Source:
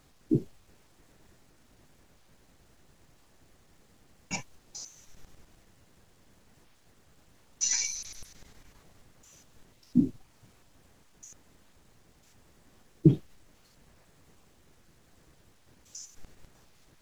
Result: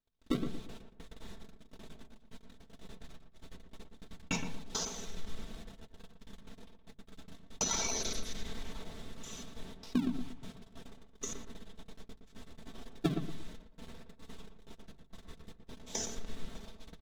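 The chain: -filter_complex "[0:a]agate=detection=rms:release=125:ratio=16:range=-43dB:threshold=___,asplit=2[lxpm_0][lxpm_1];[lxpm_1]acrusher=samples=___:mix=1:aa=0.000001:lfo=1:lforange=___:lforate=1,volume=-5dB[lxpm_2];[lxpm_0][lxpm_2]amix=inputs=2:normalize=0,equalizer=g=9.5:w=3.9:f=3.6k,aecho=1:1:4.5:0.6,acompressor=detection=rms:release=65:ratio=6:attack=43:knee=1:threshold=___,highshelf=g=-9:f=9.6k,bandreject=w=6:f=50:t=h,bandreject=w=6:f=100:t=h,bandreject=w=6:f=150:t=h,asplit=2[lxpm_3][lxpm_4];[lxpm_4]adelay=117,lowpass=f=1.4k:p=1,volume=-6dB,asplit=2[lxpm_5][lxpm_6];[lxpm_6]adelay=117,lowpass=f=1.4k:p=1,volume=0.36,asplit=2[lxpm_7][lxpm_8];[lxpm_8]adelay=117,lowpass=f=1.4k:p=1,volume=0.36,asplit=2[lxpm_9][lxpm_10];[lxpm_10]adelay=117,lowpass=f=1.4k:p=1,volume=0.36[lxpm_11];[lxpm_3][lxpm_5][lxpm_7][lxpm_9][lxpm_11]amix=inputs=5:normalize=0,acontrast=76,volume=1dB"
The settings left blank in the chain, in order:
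-57dB, 37, 37, -42dB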